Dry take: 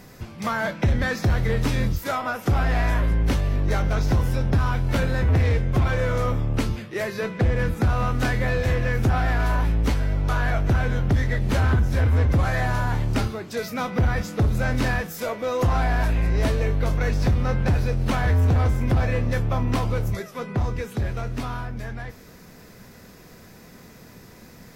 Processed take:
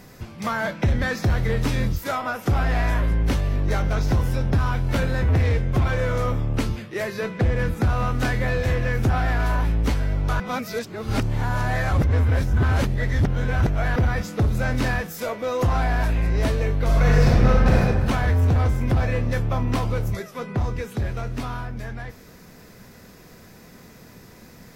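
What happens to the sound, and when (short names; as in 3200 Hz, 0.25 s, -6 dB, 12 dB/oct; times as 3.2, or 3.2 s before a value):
10.4–13.96 reverse
16.85–17.77 reverb throw, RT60 1.6 s, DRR -5 dB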